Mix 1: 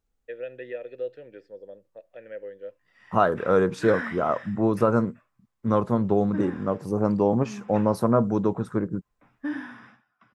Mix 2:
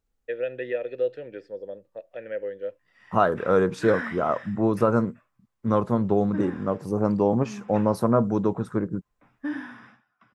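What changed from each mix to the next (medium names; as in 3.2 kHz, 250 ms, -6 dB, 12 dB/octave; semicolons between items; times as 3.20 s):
first voice +6.5 dB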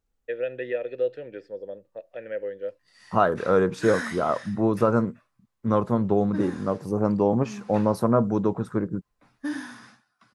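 background: remove Savitzky-Golay filter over 25 samples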